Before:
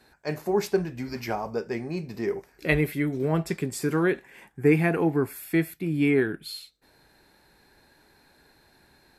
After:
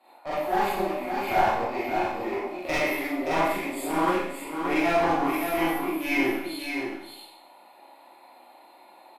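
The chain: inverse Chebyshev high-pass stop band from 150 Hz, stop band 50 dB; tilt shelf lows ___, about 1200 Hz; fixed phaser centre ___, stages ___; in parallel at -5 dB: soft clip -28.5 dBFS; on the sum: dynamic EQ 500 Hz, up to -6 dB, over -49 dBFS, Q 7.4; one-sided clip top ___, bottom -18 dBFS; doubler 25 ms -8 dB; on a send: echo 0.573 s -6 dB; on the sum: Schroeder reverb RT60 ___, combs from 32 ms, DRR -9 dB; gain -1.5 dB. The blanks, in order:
+9.5 dB, 1600 Hz, 6, -34.5 dBFS, 0.76 s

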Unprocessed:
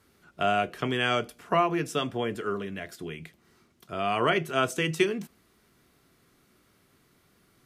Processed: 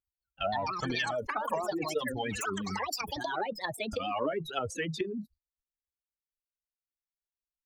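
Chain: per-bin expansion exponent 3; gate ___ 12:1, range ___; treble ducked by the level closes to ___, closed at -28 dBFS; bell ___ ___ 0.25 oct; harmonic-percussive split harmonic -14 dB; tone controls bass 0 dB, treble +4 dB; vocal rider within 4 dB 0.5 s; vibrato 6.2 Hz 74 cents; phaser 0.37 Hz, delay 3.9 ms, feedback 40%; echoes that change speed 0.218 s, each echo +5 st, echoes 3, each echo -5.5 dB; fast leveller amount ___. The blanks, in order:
-59 dBFS, -26 dB, 540 Hz, 3100 Hz, +5 dB, 70%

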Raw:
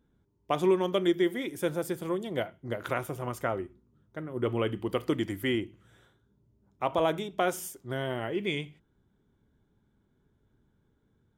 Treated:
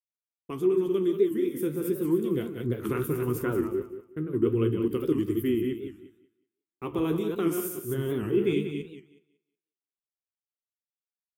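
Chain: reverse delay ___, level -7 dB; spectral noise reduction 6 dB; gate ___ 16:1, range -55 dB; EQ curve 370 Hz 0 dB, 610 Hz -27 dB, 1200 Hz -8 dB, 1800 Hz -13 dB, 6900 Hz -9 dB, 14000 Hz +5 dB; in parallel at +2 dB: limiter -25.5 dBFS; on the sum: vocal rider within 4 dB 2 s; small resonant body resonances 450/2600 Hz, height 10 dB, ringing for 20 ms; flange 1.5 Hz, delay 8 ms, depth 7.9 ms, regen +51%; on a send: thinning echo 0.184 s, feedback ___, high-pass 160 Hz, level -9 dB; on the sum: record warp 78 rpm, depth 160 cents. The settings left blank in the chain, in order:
0.147 s, -53 dBFS, 24%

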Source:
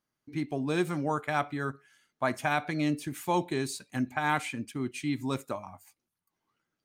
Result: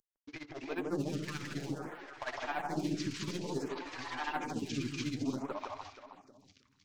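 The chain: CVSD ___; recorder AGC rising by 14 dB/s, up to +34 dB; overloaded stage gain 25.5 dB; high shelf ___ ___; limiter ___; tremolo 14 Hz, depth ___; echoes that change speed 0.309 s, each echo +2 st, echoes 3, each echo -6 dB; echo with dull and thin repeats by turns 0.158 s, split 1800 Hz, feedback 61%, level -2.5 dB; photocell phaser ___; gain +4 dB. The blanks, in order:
32 kbps, 4100 Hz, +8 dB, -30 dBFS, 90%, 0.56 Hz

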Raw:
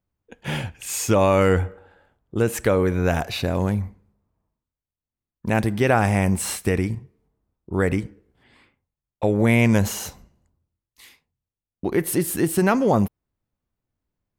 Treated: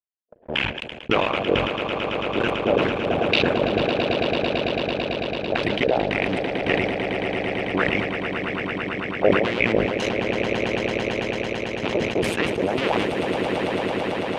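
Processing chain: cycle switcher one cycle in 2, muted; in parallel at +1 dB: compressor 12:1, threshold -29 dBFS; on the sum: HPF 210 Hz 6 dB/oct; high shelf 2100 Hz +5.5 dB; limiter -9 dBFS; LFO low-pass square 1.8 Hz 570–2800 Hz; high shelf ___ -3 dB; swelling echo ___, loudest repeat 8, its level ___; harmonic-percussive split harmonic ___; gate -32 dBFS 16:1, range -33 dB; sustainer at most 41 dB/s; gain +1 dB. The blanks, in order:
10000 Hz, 0.111 s, -8.5 dB, -15 dB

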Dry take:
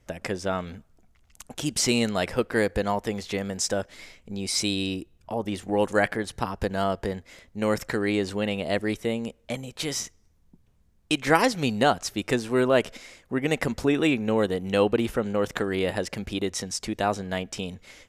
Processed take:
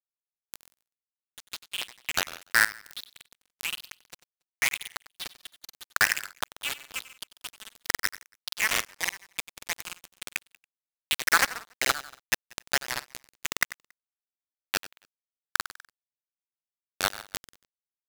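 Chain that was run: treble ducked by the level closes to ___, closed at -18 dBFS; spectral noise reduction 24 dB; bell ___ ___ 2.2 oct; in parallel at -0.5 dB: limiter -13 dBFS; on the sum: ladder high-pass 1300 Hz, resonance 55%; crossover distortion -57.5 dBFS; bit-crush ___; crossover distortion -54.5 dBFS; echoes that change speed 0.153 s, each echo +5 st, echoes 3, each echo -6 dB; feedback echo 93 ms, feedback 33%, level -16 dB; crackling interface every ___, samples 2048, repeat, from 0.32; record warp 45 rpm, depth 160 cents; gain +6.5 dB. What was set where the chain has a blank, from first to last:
1900 Hz, 5000 Hz, -2 dB, 4-bit, 0.28 s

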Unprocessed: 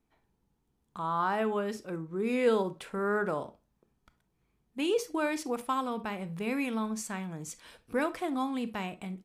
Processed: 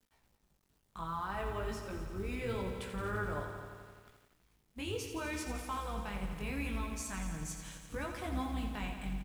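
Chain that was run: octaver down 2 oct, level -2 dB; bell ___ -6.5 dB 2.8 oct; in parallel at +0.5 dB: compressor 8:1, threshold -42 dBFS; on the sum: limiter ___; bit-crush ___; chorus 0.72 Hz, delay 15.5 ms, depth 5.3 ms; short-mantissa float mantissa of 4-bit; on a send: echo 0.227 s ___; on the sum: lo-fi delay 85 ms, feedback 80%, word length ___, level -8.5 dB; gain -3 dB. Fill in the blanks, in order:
410 Hz, -24 dBFS, 11-bit, -14.5 dB, 10-bit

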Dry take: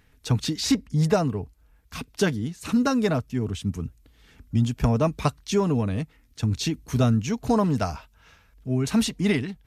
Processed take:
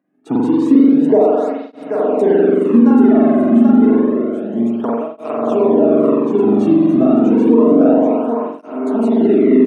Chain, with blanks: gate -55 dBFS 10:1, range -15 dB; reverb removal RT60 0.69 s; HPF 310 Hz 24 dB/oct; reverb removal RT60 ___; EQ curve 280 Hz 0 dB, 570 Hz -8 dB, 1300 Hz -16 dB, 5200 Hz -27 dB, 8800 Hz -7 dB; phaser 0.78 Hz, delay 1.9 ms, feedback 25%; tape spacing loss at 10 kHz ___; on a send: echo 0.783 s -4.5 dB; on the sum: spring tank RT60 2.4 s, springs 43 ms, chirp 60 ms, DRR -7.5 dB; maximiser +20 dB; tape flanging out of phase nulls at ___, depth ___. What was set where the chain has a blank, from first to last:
0.7 s, 24 dB, 0.29 Hz, 2.3 ms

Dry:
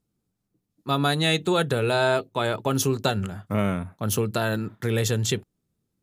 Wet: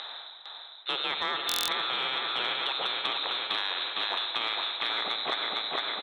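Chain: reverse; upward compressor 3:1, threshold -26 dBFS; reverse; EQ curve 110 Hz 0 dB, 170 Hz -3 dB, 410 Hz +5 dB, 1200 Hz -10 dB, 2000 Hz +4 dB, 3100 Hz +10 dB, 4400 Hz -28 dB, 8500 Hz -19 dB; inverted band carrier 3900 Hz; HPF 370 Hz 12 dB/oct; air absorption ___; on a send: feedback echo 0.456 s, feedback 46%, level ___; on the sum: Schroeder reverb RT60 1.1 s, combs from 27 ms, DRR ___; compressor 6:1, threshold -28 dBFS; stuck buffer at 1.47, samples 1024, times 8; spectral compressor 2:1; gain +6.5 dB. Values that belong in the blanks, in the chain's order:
140 m, -5.5 dB, 11.5 dB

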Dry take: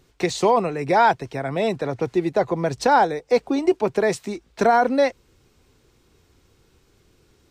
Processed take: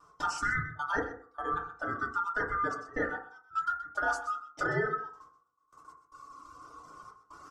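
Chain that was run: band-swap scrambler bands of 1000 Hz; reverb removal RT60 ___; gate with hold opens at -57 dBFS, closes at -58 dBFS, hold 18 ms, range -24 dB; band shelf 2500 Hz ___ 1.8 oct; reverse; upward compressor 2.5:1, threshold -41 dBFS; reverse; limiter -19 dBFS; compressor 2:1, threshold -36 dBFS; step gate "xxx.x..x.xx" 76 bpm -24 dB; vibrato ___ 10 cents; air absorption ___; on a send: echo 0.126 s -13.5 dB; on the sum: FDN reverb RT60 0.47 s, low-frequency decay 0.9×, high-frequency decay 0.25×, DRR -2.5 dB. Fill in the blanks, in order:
2 s, -13.5 dB, 0.92 Hz, 67 m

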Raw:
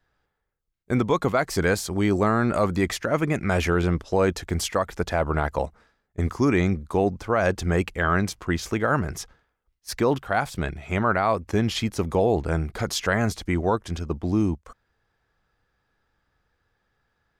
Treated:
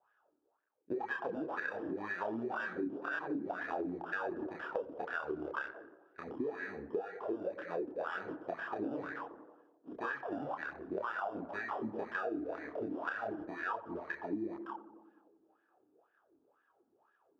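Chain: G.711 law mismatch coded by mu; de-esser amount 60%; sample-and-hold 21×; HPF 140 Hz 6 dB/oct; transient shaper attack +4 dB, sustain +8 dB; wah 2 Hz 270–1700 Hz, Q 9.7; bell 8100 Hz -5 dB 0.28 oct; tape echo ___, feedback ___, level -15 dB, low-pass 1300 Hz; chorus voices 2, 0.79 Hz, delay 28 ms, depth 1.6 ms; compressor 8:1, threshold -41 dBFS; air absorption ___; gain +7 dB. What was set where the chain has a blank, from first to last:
91 ms, 75%, 59 m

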